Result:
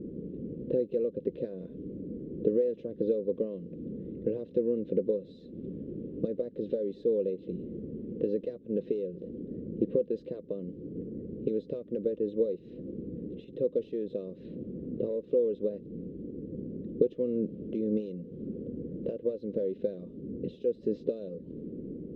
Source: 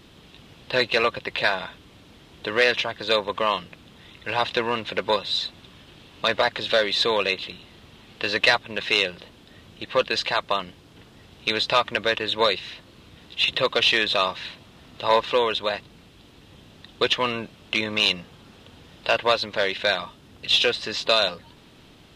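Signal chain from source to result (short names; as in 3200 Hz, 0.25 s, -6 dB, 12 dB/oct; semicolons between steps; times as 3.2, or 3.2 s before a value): low-pass opened by the level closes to 1900 Hz, open at -20 dBFS; compressor 12:1, threshold -34 dBFS, peak gain reduction 21.5 dB; EQ curve 110 Hz 0 dB, 190 Hz +13 dB, 500 Hz +12 dB, 790 Hz -30 dB; gain +2 dB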